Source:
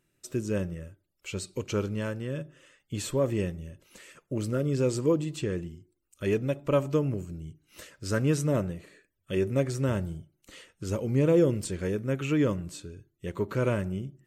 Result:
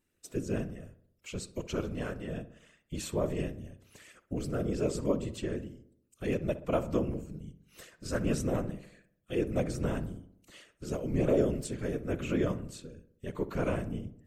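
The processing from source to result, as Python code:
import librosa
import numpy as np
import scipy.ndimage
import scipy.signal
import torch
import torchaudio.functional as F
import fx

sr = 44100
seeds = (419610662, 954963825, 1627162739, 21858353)

p1 = fx.whisperise(x, sr, seeds[0])
p2 = p1 + fx.echo_filtered(p1, sr, ms=63, feedback_pct=58, hz=1900.0, wet_db=-14.5, dry=0)
y = p2 * librosa.db_to_amplitude(-4.5)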